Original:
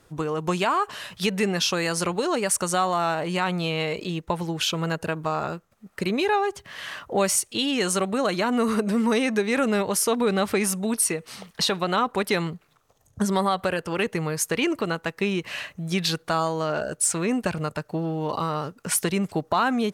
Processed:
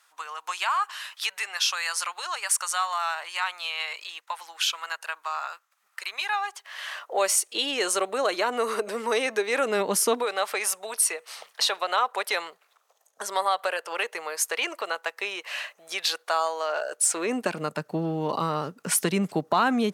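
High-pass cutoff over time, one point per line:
high-pass 24 dB/octave
6.30 s 960 Hz
7.47 s 380 Hz
9.62 s 380 Hz
10.03 s 150 Hz
10.27 s 550 Hz
16.84 s 550 Hz
17.81 s 150 Hz

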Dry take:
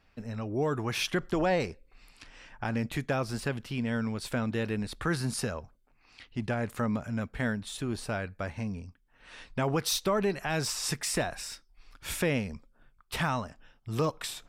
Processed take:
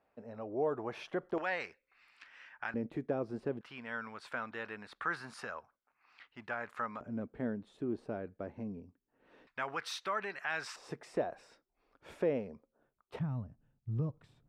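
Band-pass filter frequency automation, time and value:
band-pass filter, Q 1.5
600 Hz
from 1.38 s 1.7 kHz
from 2.74 s 380 Hz
from 3.61 s 1.3 kHz
from 7.01 s 360 Hz
from 9.47 s 1.6 kHz
from 10.76 s 480 Hz
from 13.19 s 120 Hz

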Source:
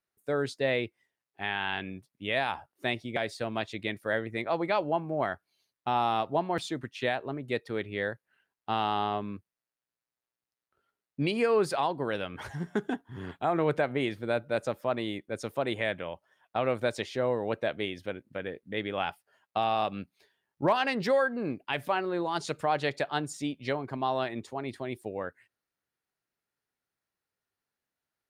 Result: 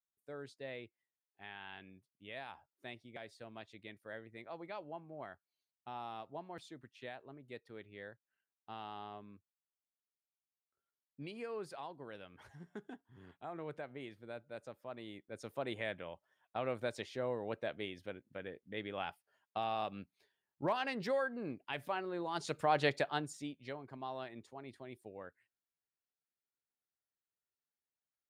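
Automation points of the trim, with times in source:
14.83 s -18 dB
15.61 s -9.5 dB
22.19 s -9.5 dB
22.86 s -1.5 dB
23.66 s -14 dB

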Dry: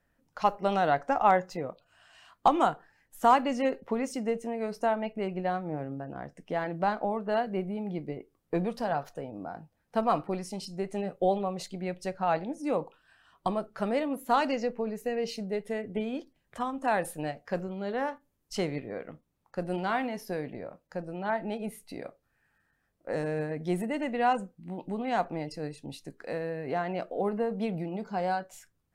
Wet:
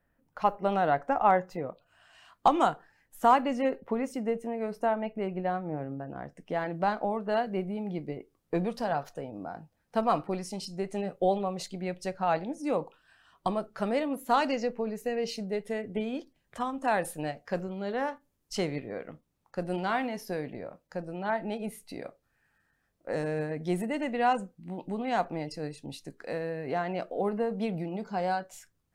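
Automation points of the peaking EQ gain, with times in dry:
peaking EQ 5.7 kHz 1.7 oct
1.49 s -9 dB
2.67 s +3 dB
3.77 s -8 dB
5.60 s -8 dB
6.96 s +2 dB

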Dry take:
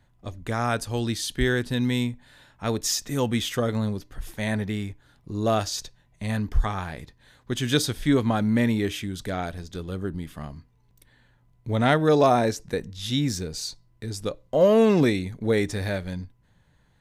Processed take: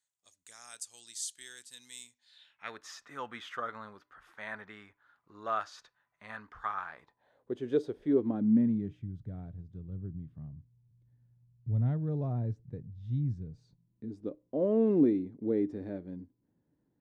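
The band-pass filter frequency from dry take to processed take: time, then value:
band-pass filter, Q 3.2
2.07 s 7.7 kHz
2.84 s 1.3 kHz
6.91 s 1.3 kHz
7.54 s 420 Hz
8.05 s 420 Hz
9.05 s 120 Hz
13.50 s 120 Hz
14.21 s 300 Hz

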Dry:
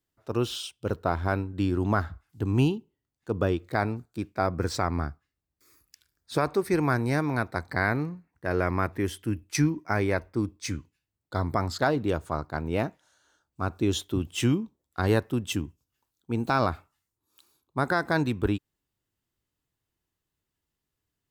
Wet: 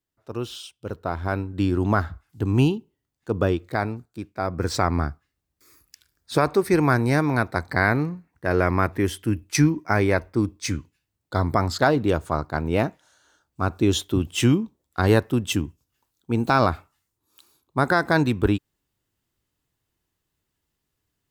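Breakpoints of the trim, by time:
0.91 s -3 dB
1.60 s +4 dB
3.48 s +4 dB
4.32 s -2.5 dB
4.78 s +5.5 dB

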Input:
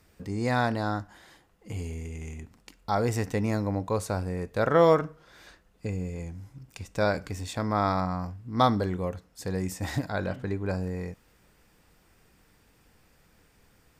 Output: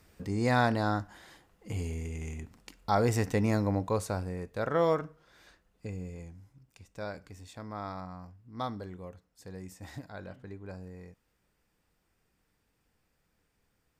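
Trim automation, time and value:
3.72 s 0 dB
4.58 s -7 dB
6.12 s -7 dB
6.70 s -13.5 dB

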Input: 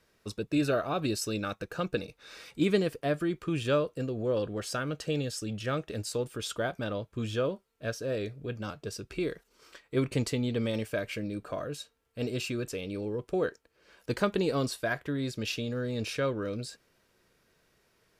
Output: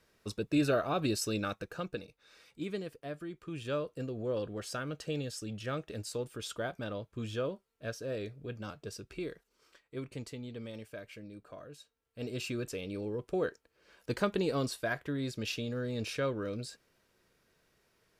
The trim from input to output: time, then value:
1.46 s -1 dB
2.23 s -12 dB
3.35 s -12 dB
4.00 s -5 dB
8.93 s -5 dB
10.08 s -13 dB
11.77 s -13 dB
12.50 s -3 dB

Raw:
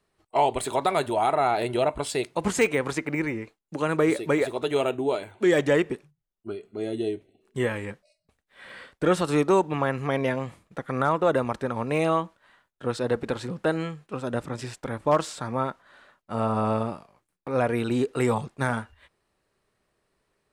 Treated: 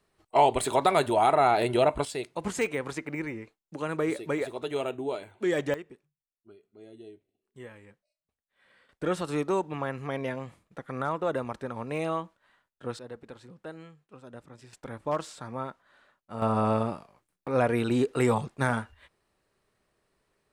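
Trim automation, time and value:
+1 dB
from 2.05 s -6.5 dB
from 5.74 s -19 dB
from 8.89 s -7 dB
from 12.99 s -17 dB
from 14.73 s -8 dB
from 16.42 s -0.5 dB

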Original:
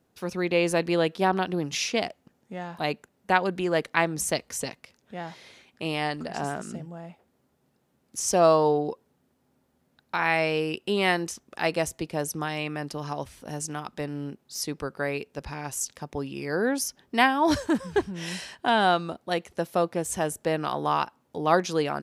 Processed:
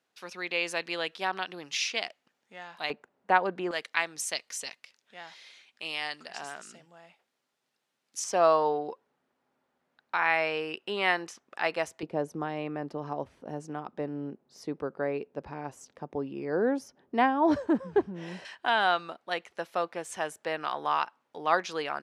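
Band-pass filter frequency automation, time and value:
band-pass filter, Q 0.64
2.9 kHz
from 2.90 s 890 Hz
from 3.71 s 3.6 kHz
from 8.24 s 1.4 kHz
from 12.03 s 460 Hz
from 18.45 s 1.8 kHz

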